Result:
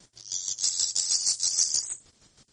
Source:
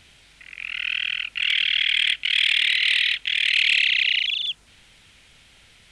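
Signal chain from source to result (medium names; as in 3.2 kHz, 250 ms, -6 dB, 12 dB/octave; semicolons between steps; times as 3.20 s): median filter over 9 samples; gate with hold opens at -46 dBFS; square tremolo 2.7 Hz, depth 60%, duty 35%; feedback echo behind a high-pass 69 ms, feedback 48%, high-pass 3.5 kHz, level -9 dB; speed mistake 33 rpm record played at 78 rpm; MP3 40 kbps 48 kHz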